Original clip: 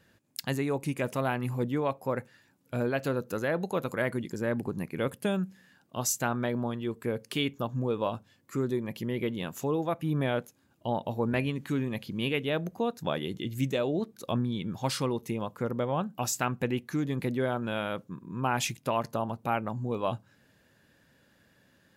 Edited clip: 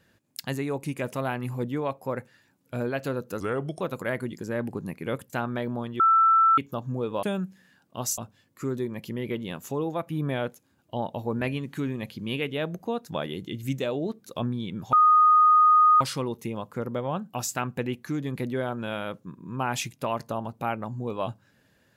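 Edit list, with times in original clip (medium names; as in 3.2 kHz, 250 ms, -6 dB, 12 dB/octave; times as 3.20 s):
3.40–3.73 s: speed 81%
5.22–6.17 s: move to 8.10 s
6.87–7.45 s: bleep 1.33 kHz -15.5 dBFS
14.85 s: add tone 1.24 kHz -14 dBFS 1.08 s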